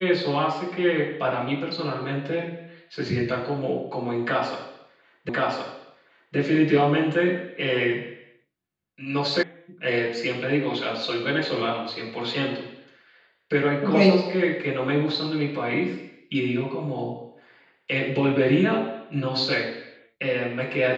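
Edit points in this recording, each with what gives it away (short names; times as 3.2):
5.29 repeat of the last 1.07 s
9.43 sound cut off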